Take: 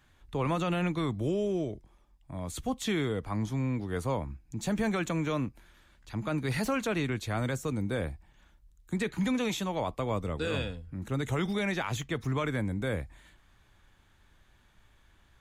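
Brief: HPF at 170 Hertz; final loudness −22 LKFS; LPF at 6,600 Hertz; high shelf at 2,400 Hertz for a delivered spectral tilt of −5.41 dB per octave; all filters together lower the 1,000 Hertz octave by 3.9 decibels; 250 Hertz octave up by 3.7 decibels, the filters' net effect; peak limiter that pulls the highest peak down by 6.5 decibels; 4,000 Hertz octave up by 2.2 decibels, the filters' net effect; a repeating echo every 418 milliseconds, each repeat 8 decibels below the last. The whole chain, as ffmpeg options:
ffmpeg -i in.wav -af "highpass=170,lowpass=6600,equalizer=frequency=250:width_type=o:gain=6.5,equalizer=frequency=1000:width_type=o:gain=-5,highshelf=frequency=2400:gain=-4.5,equalizer=frequency=4000:width_type=o:gain=7,alimiter=limit=-23.5dB:level=0:latency=1,aecho=1:1:418|836|1254|1672|2090:0.398|0.159|0.0637|0.0255|0.0102,volume=10.5dB" out.wav

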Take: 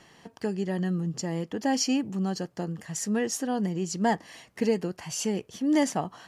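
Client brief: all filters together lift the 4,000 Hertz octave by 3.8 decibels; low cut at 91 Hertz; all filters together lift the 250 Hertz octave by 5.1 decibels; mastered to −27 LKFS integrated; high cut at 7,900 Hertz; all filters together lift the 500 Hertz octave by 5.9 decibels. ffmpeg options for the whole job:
ffmpeg -i in.wav -af "highpass=91,lowpass=7900,equalizer=frequency=250:width_type=o:gain=5,equalizer=frequency=500:width_type=o:gain=5.5,equalizer=frequency=4000:width_type=o:gain=6,volume=-2.5dB" out.wav

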